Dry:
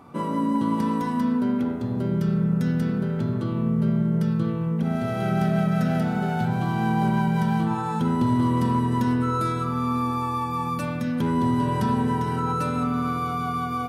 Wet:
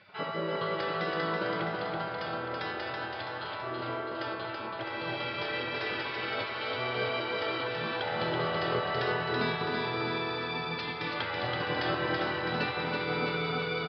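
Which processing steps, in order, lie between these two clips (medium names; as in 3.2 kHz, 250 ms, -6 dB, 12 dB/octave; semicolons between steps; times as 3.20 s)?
high-pass 300 Hz 12 dB/octave; spectral gate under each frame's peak -15 dB weak; steep low-pass 5 kHz 96 dB/octave; on a send: feedback delay 329 ms, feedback 58%, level -4 dB; on the sum: trim +6 dB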